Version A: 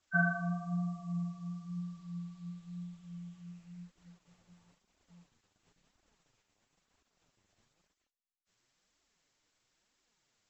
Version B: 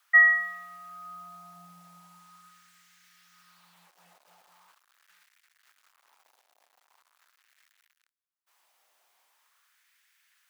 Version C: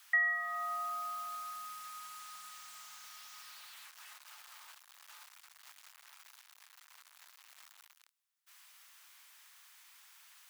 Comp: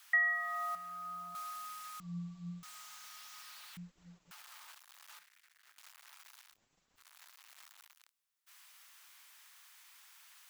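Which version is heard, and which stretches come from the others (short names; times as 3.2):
C
0.75–1.35 from B
2–2.63 from A
3.77–4.31 from A
5.19–5.78 from B
6.53–7 from A, crossfade 0.10 s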